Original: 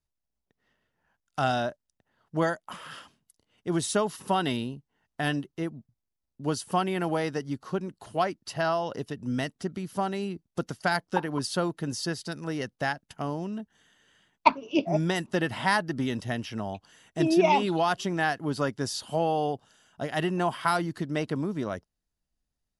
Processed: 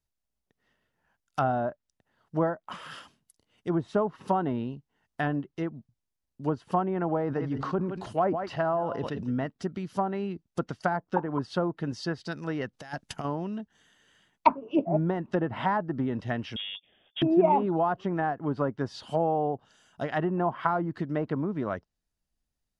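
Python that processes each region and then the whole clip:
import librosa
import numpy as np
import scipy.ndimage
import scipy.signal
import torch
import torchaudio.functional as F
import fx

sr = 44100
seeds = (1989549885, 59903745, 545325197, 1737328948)

y = fx.chain(x, sr, fx.echo_single(ms=165, db=-16.5),
    fx.sustainer(db_per_s=50.0), at=(7.19, 9.46))
y = fx.chain(y, sr, fx.high_shelf(hz=5600.0, db=6.0),
    fx.over_compress(threshold_db=-35.0, ratio=-0.5), at=(12.73, 13.25))
y = fx.chain(y, sr, fx.peak_eq(hz=1900.0, db=-12.5, octaves=1.9),
    fx.overload_stage(gain_db=31.5),
    fx.freq_invert(carrier_hz=3500), at=(16.56, 17.22))
y = fx.env_lowpass_down(y, sr, base_hz=850.0, full_db=-23.5)
y = fx.dynamic_eq(y, sr, hz=1200.0, q=1.1, threshold_db=-40.0, ratio=4.0, max_db=4)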